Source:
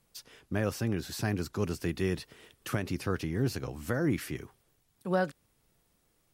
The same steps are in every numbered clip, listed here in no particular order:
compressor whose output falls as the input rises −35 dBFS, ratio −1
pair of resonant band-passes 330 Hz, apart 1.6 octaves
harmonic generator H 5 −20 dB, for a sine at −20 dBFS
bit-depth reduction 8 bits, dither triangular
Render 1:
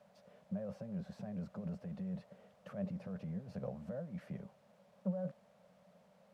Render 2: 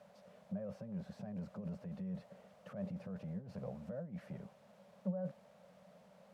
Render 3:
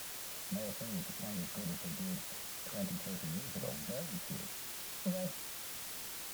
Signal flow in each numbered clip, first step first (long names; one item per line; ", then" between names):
compressor whose output falls as the input rises, then bit-depth reduction, then pair of resonant band-passes, then harmonic generator
bit-depth reduction, then compressor whose output falls as the input rises, then harmonic generator, then pair of resonant band-passes
compressor whose output falls as the input rises, then pair of resonant band-passes, then bit-depth reduction, then harmonic generator